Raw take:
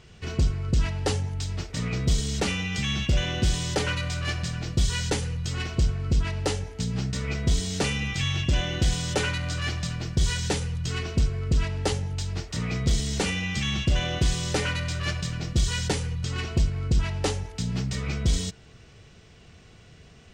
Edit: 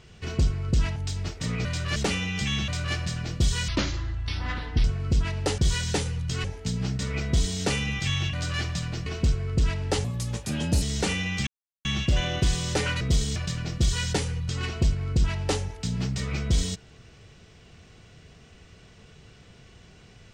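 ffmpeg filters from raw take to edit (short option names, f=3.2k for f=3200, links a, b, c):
-filter_complex "[0:a]asplit=16[a][b][c][d][e][f][g][h][i][j][k][l][m][n][o][p];[a]atrim=end=0.962[q];[b]atrim=start=1.288:end=1.982[r];[c]atrim=start=14.798:end=15.112[s];[d]atrim=start=2.328:end=3.052[t];[e]atrim=start=4.048:end=5.054[u];[f]atrim=start=5.05:end=5.84,asetpts=PTS-STARTPTS,asetrate=29988,aresample=44100[v];[g]atrim=start=5.836:end=6.582[w];[h]atrim=start=10.138:end=11.002[x];[i]atrim=start=6.578:end=8.472[y];[j]atrim=start=9.408:end=10.142[z];[k]atrim=start=10.998:end=11.984[aa];[l]atrim=start=11.98:end=12.99,asetpts=PTS-STARTPTS,asetrate=57330,aresample=44100,atrim=end_sample=34262,asetpts=PTS-STARTPTS[ab];[m]atrim=start=12.986:end=13.64,asetpts=PTS-STARTPTS,afade=t=out:st=0.65:d=0.004:c=hsin,apad=pad_dur=0.38[ac];[n]atrim=start=13.64:end=14.802,asetpts=PTS-STARTPTS,afade=t=in:d=0.004:c=hsin[ad];[o]atrim=start=1.978:end=2.332[ae];[p]atrim=start=15.108[af];[q][r]acrossfade=d=0.004:c1=hsin:c2=hsin[ag];[ag][s]acrossfade=d=0.004:c1=hsin:c2=hsin[ah];[ah][t]acrossfade=d=0.004:c1=hsin:c2=hsin[ai];[ai][u]acrossfade=d=0.004:c1=hsin:c2=hsin[aj];[aj][v]acrossfade=d=0.004:c1=hsin:c2=hsin[ak];[ak][w]acrossfade=d=0.004:c1=hsin:c2=hsin[al];[al][x]acrossfade=d=0.004:c1=hsin:c2=hsin[am];[am][y]acrossfade=d=0.004:c1=hsin:c2=hsin[an];[an][z]acrossfade=d=0.004:c1=hsin:c2=hsin[ao];[ao][aa]acrossfade=d=0.004:c1=hsin:c2=hsin[ap];[ap][ab]acrossfade=d=0.004:c1=hsin:c2=hsin[aq];[ac][ad]concat=n=2:v=0:a=1[ar];[aq][ar]acrossfade=d=0.004:c1=hsin:c2=hsin[as];[as][ae]acrossfade=d=0.004:c1=hsin:c2=hsin[at];[at][af]acrossfade=d=0.004:c1=hsin:c2=hsin"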